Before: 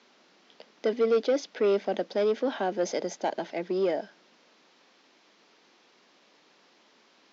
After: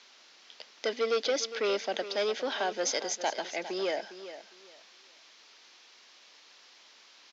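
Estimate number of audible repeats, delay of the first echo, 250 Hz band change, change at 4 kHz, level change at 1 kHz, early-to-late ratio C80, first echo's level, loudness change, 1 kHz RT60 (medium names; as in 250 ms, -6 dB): 2, 406 ms, -8.5 dB, +8.0 dB, -1.0 dB, no reverb, -13.0 dB, -3.0 dB, no reverb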